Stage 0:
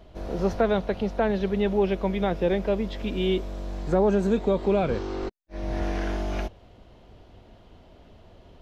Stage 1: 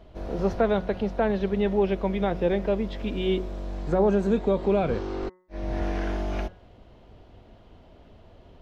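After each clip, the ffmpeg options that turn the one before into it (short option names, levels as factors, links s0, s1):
-af "highshelf=f=4400:g=-6.5,bandreject=f=183:t=h:w=4,bandreject=f=366:t=h:w=4,bandreject=f=549:t=h:w=4,bandreject=f=732:t=h:w=4,bandreject=f=915:t=h:w=4,bandreject=f=1098:t=h:w=4,bandreject=f=1281:t=h:w=4,bandreject=f=1464:t=h:w=4,bandreject=f=1647:t=h:w=4,bandreject=f=1830:t=h:w=4,bandreject=f=2013:t=h:w=4"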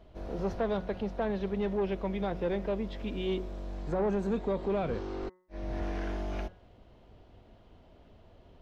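-af "asoftclip=type=tanh:threshold=0.133,volume=0.531"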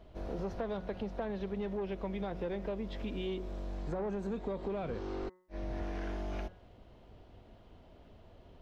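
-af "acompressor=threshold=0.02:ratio=6"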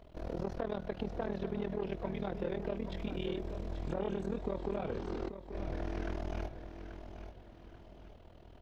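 -af "tremolo=f=40:d=0.947,aecho=1:1:834|1668|2502|3336:0.316|0.114|0.041|0.0148,volume=1.5"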